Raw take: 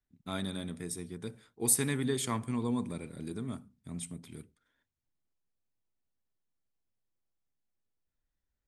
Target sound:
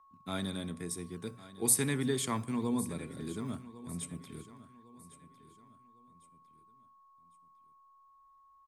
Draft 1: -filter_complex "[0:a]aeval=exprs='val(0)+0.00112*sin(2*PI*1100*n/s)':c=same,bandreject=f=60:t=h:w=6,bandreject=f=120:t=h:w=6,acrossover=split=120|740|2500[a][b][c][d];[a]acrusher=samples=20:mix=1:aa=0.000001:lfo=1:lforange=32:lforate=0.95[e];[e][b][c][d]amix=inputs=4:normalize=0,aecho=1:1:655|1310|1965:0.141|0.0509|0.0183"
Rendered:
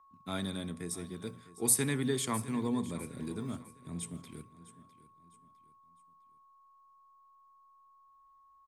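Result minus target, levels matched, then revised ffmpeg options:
echo 0.449 s early
-filter_complex "[0:a]aeval=exprs='val(0)+0.00112*sin(2*PI*1100*n/s)':c=same,bandreject=f=60:t=h:w=6,bandreject=f=120:t=h:w=6,acrossover=split=120|740|2500[a][b][c][d];[a]acrusher=samples=20:mix=1:aa=0.000001:lfo=1:lforange=32:lforate=0.95[e];[e][b][c][d]amix=inputs=4:normalize=0,aecho=1:1:1104|2208|3312:0.141|0.0509|0.0183"

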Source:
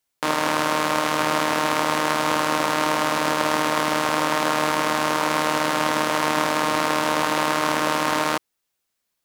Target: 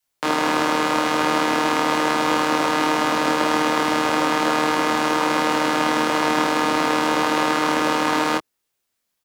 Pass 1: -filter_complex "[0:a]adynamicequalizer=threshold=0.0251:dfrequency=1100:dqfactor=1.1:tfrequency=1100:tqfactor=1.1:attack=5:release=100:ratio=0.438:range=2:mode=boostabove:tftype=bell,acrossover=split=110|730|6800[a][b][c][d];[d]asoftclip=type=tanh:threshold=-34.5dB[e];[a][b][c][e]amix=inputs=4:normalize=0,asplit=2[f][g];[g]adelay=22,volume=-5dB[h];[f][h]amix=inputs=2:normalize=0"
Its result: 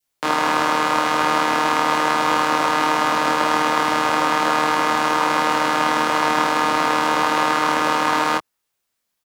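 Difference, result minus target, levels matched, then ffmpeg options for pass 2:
250 Hz band -5.0 dB
-filter_complex "[0:a]adynamicequalizer=threshold=0.0251:dfrequency=330:dqfactor=1.1:tfrequency=330:tqfactor=1.1:attack=5:release=100:ratio=0.438:range=2:mode=boostabove:tftype=bell,acrossover=split=110|730|6800[a][b][c][d];[d]asoftclip=type=tanh:threshold=-34.5dB[e];[a][b][c][e]amix=inputs=4:normalize=0,asplit=2[f][g];[g]adelay=22,volume=-5dB[h];[f][h]amix=inputs=2:normalize=0"

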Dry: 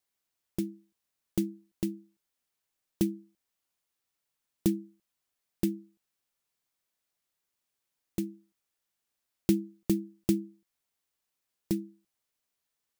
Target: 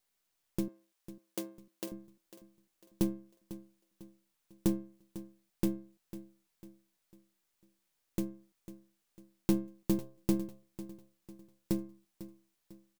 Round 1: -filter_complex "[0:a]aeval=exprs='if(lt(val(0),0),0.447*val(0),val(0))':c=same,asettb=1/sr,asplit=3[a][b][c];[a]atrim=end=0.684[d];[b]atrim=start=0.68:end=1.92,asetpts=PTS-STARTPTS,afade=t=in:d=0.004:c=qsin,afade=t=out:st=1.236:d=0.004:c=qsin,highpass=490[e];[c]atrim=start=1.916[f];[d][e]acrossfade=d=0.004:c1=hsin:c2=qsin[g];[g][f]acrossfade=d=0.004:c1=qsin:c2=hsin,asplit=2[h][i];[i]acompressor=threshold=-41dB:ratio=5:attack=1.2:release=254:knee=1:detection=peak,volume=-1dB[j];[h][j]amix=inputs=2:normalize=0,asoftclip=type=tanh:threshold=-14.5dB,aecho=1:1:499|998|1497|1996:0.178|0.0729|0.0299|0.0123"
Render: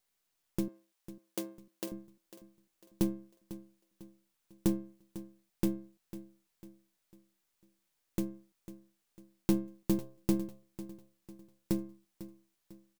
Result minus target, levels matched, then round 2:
compressor: peak gain reduction -6.5 dB
-filter_complex "[0:a]aeval=exprs='if(lt(val(0),0),0.447*val(0),val(0))':c=same,asettb=1/sr,asplit=3[a][b][c];[a]atrim=end=0.684[d];[b]atrim=start=0.68:end=1.92,asetpts=PTS-STARTPTS,afade=t=in:d=0.004:c=qsin,afade=t=out:st=1.236:d=0.004:c=qsin,highpass=490[e];[c]atrim=start=1.916[f];[d][e]acrossfade=d=0.004:c1=hsin:c2=qsin[g];[g][f]acrossfade=d=0.004:c1=qsin:c2=hsin,asplit=2[h][i];[i]acompressor=threshold=-49dB:ratio=5:attack=1.2:release=254:knee=1:detection=peak,volume=-1dB[j];[h][j]amix=inputs=2:normalize=0,asoftclip=type=tanh:threshold=-14.5dB,aecho=1:1:499|998|1497|1996:0.178|0.0729|0.0299|0.0123"

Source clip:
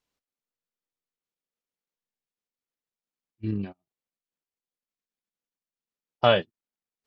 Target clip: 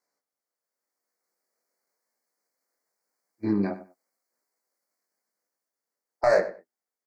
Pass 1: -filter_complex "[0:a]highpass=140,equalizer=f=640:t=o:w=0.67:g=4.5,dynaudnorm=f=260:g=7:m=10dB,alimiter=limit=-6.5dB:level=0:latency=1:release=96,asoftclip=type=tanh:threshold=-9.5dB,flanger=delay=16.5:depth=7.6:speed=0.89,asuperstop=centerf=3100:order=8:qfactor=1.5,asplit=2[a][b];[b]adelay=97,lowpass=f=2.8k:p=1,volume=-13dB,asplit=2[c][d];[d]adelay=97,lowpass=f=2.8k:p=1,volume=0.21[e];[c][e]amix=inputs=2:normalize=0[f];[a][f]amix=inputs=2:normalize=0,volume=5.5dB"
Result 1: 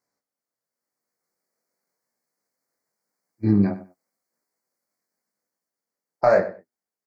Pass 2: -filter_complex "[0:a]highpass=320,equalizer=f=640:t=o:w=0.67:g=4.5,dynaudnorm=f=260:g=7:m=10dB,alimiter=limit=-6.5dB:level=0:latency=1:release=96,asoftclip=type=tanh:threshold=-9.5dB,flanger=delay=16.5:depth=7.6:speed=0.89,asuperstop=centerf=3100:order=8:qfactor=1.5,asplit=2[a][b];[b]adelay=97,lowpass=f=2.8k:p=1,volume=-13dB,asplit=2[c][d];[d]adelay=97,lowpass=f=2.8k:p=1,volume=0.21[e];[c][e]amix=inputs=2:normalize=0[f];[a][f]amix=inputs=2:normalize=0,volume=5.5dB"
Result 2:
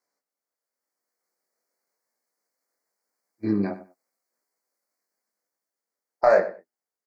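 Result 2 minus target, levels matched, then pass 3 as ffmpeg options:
soft clip: distortion -9 dB
-filter_complex "[0:a]highpass=320,equalizer=f=640:t=o:w=0.67:g=4.5,dynaudnorm=f=260:g=7:m=10dB,alimiter=limit=-6.5dB:level=0:latency=1:release=96,asoftclip=type=tanh:threshold=-17.5dB,flanger=delay=16.5:depth=7.6:speed=0.89,asuperstop=centerf=3100:order=8:qfactor=1.5,asplit=2[a][b];[b]adelay=97,lowpass=f=2.8k:p=1,volume=-13dB,asplit=2[c][d];[d]adelay=97,lowpass=f=2.8k:p=1,volume=0.21[e];[c][e]amix=inputs=2:normalize=0[f];[a][f]amix=inputs=2:normalize=0,volume=5.5dB"

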